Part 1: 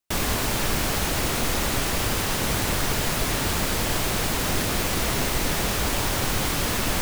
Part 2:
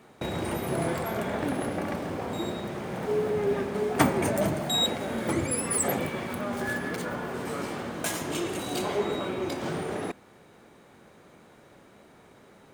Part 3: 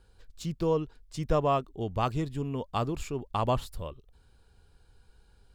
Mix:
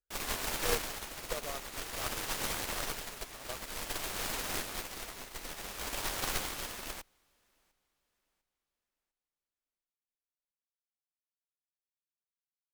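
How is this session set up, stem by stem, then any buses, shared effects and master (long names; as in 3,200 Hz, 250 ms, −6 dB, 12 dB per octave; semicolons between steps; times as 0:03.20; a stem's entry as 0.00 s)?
−1.5 dB, 0.00 s, no send, echo send −18.5 dB, shaped tremolo triangle 0.52 Hz, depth 35%
muted
−4.0 dB, 0.00 s, no send, no echo send, phaser with its sweep stopped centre 920 Hz, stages 6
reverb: not used
echo: repeating echo 699 ms, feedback 37%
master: harmonic generator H 7 −22 dB, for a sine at −11.5 dBFS; parametric band 110 Hz −11 dB 2.9 octaves; expander for the loud parts 2.5 to 1, over −39 dBFS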